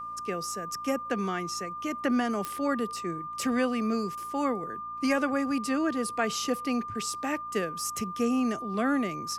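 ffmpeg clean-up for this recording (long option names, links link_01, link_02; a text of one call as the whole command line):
ffmpeg -i in.wav -af "adeclick=threshold=4,bandreject=frequency=57.2:width_type=h:width=4,bandreject=frequency=114.4:width_type=h:width=4,bandreject=frequency=171.6:width_type=h:width=4,bandreject=frequency=228.8:width_type=h:width=4,bandreject=frequency=286:width_type=h:width=4,bandreject=frequency=1200:width=30" out.wav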